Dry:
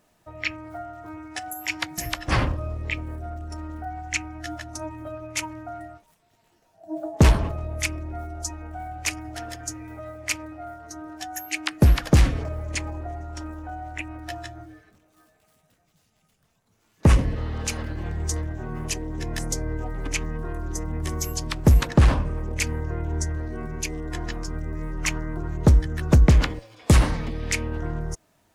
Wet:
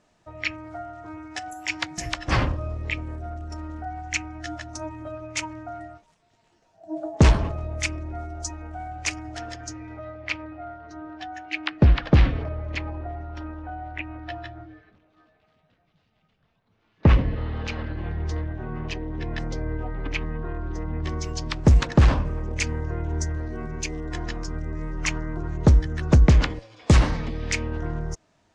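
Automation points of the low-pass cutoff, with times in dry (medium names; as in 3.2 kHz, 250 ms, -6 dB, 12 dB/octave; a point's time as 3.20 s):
low-pass 24 dB/octave
9.34 s 7.5 kHz
10.29 s 3.9 kHz
20.81 s 3.9 kHz
21.66 s 7 kHz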